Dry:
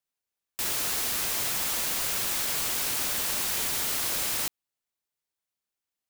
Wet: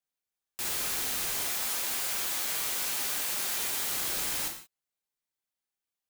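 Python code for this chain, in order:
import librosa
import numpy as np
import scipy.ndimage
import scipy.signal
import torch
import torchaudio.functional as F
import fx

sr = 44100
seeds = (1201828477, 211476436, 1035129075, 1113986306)

y = fx.low_shelf(x, sr, hz=210.0, db=-8.5, at=(1.42, 3.89))
y = fx.rev_gated(y, sr, seeds[0], gate_ms=200, shape='falling', drr_db=1.5)
y = F.gain(torch.from_numpy(y), -5.0).numpy()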